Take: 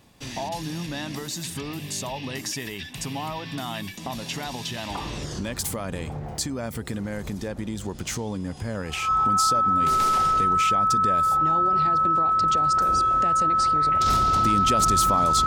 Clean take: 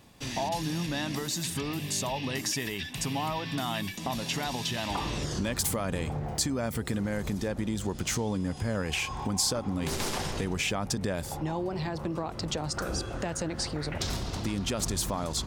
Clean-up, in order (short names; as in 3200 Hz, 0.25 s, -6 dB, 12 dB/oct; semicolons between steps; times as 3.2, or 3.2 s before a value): notch 1300 Hz, Q 30; gain 0 dB, from 14.06 s -5.5 dB